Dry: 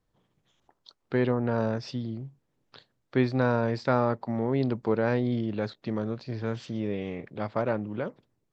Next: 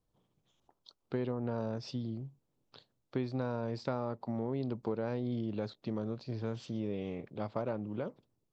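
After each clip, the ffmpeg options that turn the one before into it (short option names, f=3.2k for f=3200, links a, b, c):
-af "equalizer=f=1.8k:w=1.8:g=-8,acompressor=threshold=-27dB:ratio=4,volume=-4dB"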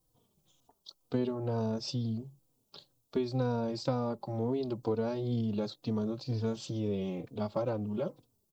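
-filter_complex "[0:a]equalizer=f=1.9k:t=o:w=0.89:g=-9,crystalizer=i=2:c=0,asplit=2[a][b];[b]adelay=3.3,afreqshift=-2.1[c];[a][c]amix=inputs=2:normalize=1,volume=6.5dB"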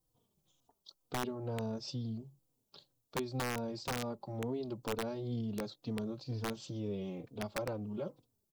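-af "aeval=exprs='(mod(13.3*val(0)+1,2)-1)/13.3':c=same,volume=-5.5dB"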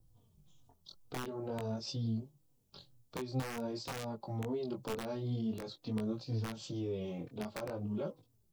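-filter_complex "[0:a]acrossover=split=150|1100|2700[a][b][c][d];[a]acompressor=mode=upward:threshold=-53dB:ratio=2.5[e];[e][b][c][d]amix=inputs=4:normalize=0,alimiter=level_in=6.5dB:limit=-24dB:level=0:latency=1:release=119,volume=-6.5dB,flanger=delay=18:depth=5.6:speed=0.48,volume=5dB"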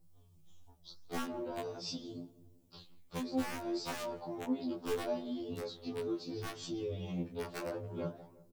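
-filter_complex "[0:a]asplit=2[a][b];[b]adelay=174,lowpass=f=1.6k:p=1,volume=-17dB,asplit=2[c][d];[d]adelay=174,lowpass=f=1.6k:p=1,volume=0.53,asplit=2[e][f];[f]adelay=174,lowpass=f=1.6k:p=1,volume=0.53,asplit=2[g][h];[h]adelay=174,lowpass=f=1.6k:p=1,volume=0.53,asplit=2[i][j];[j]adelay=174,lowpass=f=1.6k:p=1,volume=0.53[k];[a][c][e][g][i][k]amix=inputs=6:normalize=0,flanger=delay=8.4:depth=8.7:regen=-88:speed=1.8:shape=triangular,afftfilt=real='re*2*eq(mod(b,4),0)':imag='im*2*eq(mod(b,4),0)':win_size=2048:overlap=0.75,volume=8.5dB"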